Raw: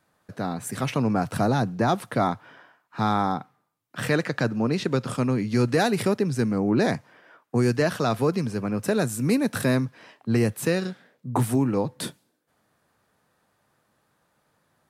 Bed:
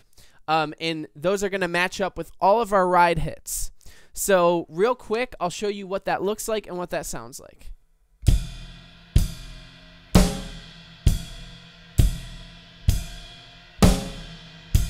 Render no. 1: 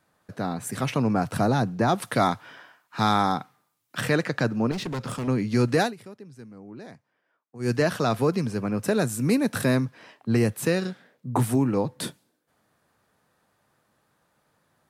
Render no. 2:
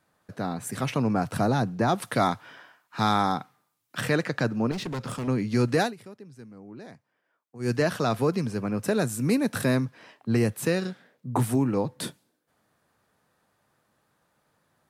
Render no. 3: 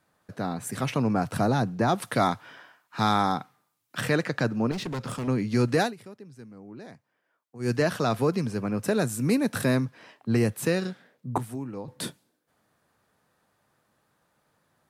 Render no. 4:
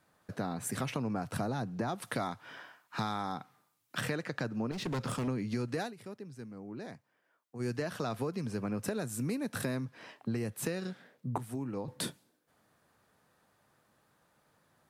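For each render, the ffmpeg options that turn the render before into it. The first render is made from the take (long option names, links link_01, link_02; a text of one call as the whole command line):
ffmpeg -i in.wav -filter_complex "[0:a]asettb=1/sr,asplit=3[link_01][link_02][link_03];[link_01]atrim=end=2.024[link_04];[link_02]atrim=start=2.02:end=4.01,asetpts=PTS-STARTPTS,afade=type=in:duration=0.004:curve=qsin,afade=type=out:start_time=1.986:duration=0.004:curve=qsin,highshelf=frequency=2000:gain=9.5[link_05];[link_03]atrim=start=4.006[link_06];[link_04][link_05]acrossfade=duration=0.004:curve1=hsin:curve2=qsin[link_07];[link_07][link_06]acrossfade=duration=0.004:curve1=qsin:curve2=hsin,asettb=1/sr,asplit=3[link_08][link_09][link_10];[link_08]atrim=end=4.714[link_11];[link_09]atrim=start=4.71:end=5.28,asetpts=PTS-STARTPTS,afade=type=in:duration=0.004:curve=qsin,afade=type=out:start_time=0.566:duration=0.004:curve=qsin,asoftclip=type=hard:threshold=-27.5dB[link_12];[link_10]atrim=start=5.276[link_13];[link_11][link_12]acrossfade=duration=0.004:curve1=hsin:curve2=qsin[link_14];[link_14][link_13]acrossfade=duration=0.004:curve1=qsin:curve2=hsin,asplit=3[link_15][link_16][link_17];[link_15]atrim=end=5.94,asetpts=PTS-STARTPTS,afade=type=out:start_time=5.81:duration=0.13:silence=0.0944061[link_18];[link_16]atrim=start=5.94:end=7.59,asetpts=PTS-STARTPTS,volume=-20.5dB[link_19];[link_17]atrim=start=7.59,asetpts=PTS-STARTPTS,afade=type=in:duration=0.13:silence=0.0944061[link_20];[link_18][link_19][link_20]concat=n=3:v=0:a=1" out.wav
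ffmpeg -i in.wav -af "volume=-1.5dB" out.wav
ffmpeg -i in.wav -filter_complex "[0:a]asplit=3[link_01][link_02][link_03];[link_01]atrim=end=11.382[link_04];[link_02]atrim=start=11.378:end=11.882,asetpts=PTS-STARTPTS,volume=-11dB[link_05];[link_03]atrim=start=11.878[link_06];[link_04][link_05]acrossfade=duration=0.004:curve1=hsin:curve2=hsin[link_07];[link_07][link_06]acrossfade=duration=0.004:curve1=hsin:curve2=hsin" out.wav
ffmpeg -i in.wav -af "acompressor=threshold=-32dB:ratio=6" out.wav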